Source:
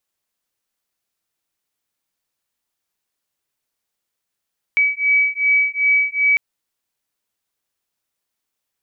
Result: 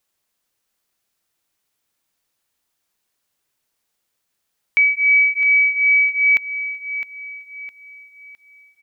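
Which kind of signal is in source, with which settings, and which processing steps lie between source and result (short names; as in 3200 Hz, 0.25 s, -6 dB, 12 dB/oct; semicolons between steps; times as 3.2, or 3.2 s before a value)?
beating tones 2280 Hz, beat 2.6 Hz, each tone -17 dBFS 1.60 s
in parallel at -2.5 dB: limiter -22 dBFS; on the sum: feedback echo 0.66 s, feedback 39%, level -11 dB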